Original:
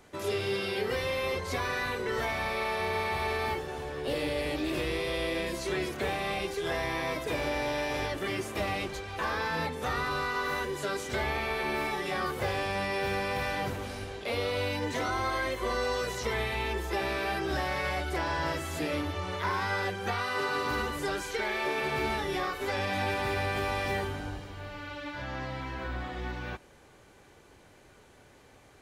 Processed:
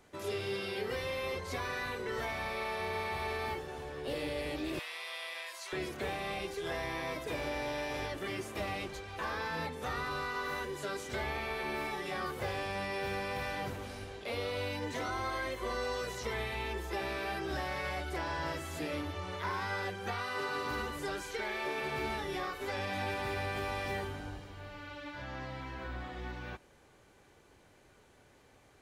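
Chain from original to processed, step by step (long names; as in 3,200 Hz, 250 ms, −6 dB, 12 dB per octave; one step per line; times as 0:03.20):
0:04.79–0:05.73: high-pass filter 800 Hz 24 dB per octave
level −5.5 dB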